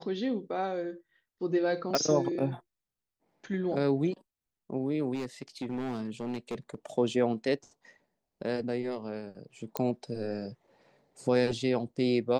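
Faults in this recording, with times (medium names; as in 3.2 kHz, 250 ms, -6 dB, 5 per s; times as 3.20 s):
1.95 s: pop -12 dBFS
5.14–6.75 s: clipped -30 dBFS
9.77 s: pop -15 dBFS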